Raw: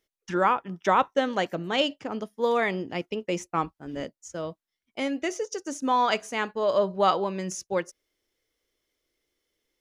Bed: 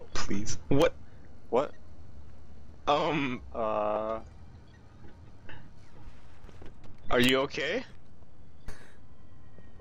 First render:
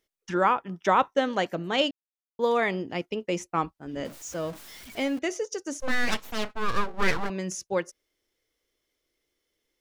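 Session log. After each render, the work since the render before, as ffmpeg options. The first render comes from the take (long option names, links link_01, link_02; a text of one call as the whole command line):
ffmpeg -i in.wav -filter_complex "[0:a]asettb=1/sr,asplit=3[link_01][link_02][link_03];[link_01]atrim=end=4.054[link_04];[link_02]atrim=start=4.05:end=5.19,asetpts=PTS-STARTPTS,afade=type=in:duration=0.004:curve=qsin,afade=type=out:start_time=1.136:duration=0.004:curve=qsin,aeval=exprs='val(0)+0.5*0.0119*sgn(val(0))':channel_layout=same[link_05];[link_03]atrim=start=5.186[link_06];[link_04][link_05]acrossfade=duration=0.004:curve1=hsin:curve2=qsin[link_07];[link_07][link_06]acrossfade=duration=0.004:curve1=qsin:curve2=hsin,asettb=1/sr,asplit=3[link_08][link_09][link_10];[link_08]atrim=end=5.804[link_11];[link_09]atrim=start=5.8:end=7.3,asetpts=PTS-STARTPTS,afade=type=in:duration=0.004:curve=qsin,afade=type=out:start_time=1.496:duration=0.004:curve=qsin,aeval=exprs='abs(val(0))':channel_layout=same[link_12];[link_10]atrim=start=7.296[link_13];[link_11][link_12]acrossfade=duration=0.004:curve1=hsin:curve2=qsin[link_14];[link_14][link_13]acrossfade=duration=0.004:curve1=qsin:curve2=hsin,asplit=3[link_15][link_16][link_17];[link_15]atrim=end=1.91,asetpts=PTS-STARTPTS,afade=type=out:start_time=1.906:duration=0.004:curve=hsin[link_18];[link_16]atrim=start=1.91:end=2.39,asetpts=PTS-STARTPTS,volume=0[link_19];[link_17]atrim=start=2.39,asetpts=PTS-STARTPTS,afade=type=in:duration=0.004:curve=hsin[link_20];[link_18][link_19][link_20]concat=n=3:v=0:a=1" out.wav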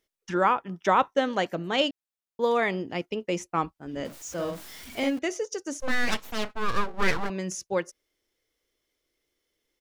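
ffmpeg -i in.wav -filter_complex "[0:a]asplit=3[link_01][link_02][link_03];[link_01]afade=type=out:start_time=4.37:duration=0.02[link_04];[link_02]asplit=2[link_05][link_06];[link_06]adelay=47,volume=-3.5dB[link_07];[link_05][link_07]amix=inputs=2:normalize=0,afade=type=in:start_time=4.37:duration=0.02,afade=type=out:start_time=5.09:duration=0.02[link_08];[link_03]afade=type=in:start_time=5.09:duration=0.02[link_09];[link_04][link_08][link_09]amix=inputs=3:normalize=0" out.wav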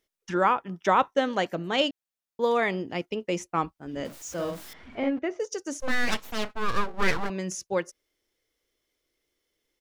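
ffmpeg -i in.wav -filter_complex "[0:a]asettb=1/sr,asplit=3[link_01][link_02][link_03];[link_01]atrim=end=4.734[link_04];[link_02]atrim=start=4.73:end=5.4,asetpts=PTS-STARTPTS,afade=type=in:duration=0.004:curve=qsin,afade=type=out:start_time=0.666:duration=0.004:curve=qsin,lowpass=1800[link_05];[link_03]atrim=start=5.396[link_06];[link_04][link_05]acrossfade=duration=0.004:curve1=hsin:curve2=qsin[link_07];[link_07][link_06]acrossfade=duration=0.004:curve1=qsin:curve2=hsin" out.wav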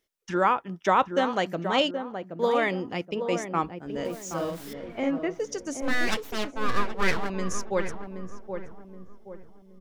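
ffmpeg -i in.wav -filter_complex "[0:a]asplit=2[link_01][link_02];[link_02]adelay=774,lowpass=frequency=950:poles=1,volume=-6.5dB,asplit=2[link_03][link_04];[link_04]adelay=774,lowpass=frequency=950:poles=1,volume=0.44,asplit=2[link_05][link_06];[link_06]adelay=774,lowpass=frequency=950:poles=1,volume=0.44,asplit=2[link_07][link_08];[link_08]adelay=774,lowpass=frequency=950:poles=1,volume=0.44,asplit=2[link_09][link_10];[link_10]adelay=774,lowpass=frequency=950:poles=1,volume=0.44[link_11];[link_01][link_03][link_05][link_07][link_09][link_11]amix=inputs=6:normalize=0" out.wav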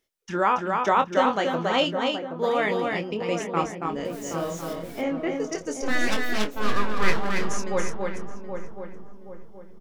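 ffmpeg -i in.wav -filter_complex "[0:a]asplit=2[link_01][link_02];[link_02]adelay=24,volume=-8dB[link_03];[link_01][link_03]amix=inputs=2:normalize=0,aecho=1:1:280:0.631" out.wav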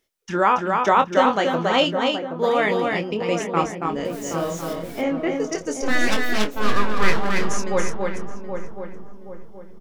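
ffmpeg -i in.wav -af "volume=4dB,alimiter=limit=-3dB:level=0:latency=1" out.wav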